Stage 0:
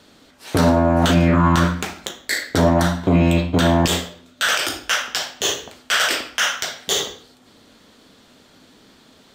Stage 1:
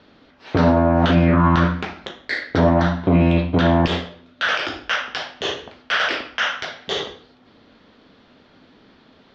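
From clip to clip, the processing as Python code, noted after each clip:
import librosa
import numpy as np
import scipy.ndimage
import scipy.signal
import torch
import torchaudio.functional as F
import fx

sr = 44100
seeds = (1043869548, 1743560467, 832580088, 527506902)

y = scipy.signal.sosfilt(scipy.signal.butter(6, 5600.0, 'lowpass', fs=sr, output='sos'), x)
y = fx.bass_treble(y, sr, bass_db=0, treble_db=-12)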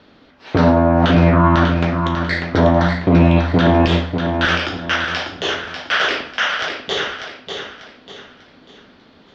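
y = fx.echo_feedback(x, sr, ms=594, feedback_pct=35, wet_db=-6.5)
y = F.gain(torch.from_numpy(y), 2.5).numpy()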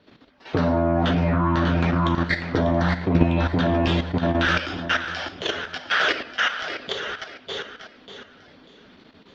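y = fx.spec_quant(x, sr, step_db=15)
y = fx.level_steps(y, sr, step_db=10)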